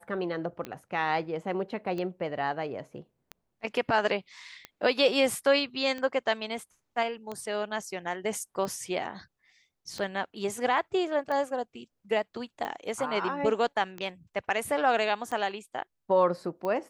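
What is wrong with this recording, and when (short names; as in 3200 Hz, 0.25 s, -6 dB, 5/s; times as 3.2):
tick 45 rpm -22 dBFS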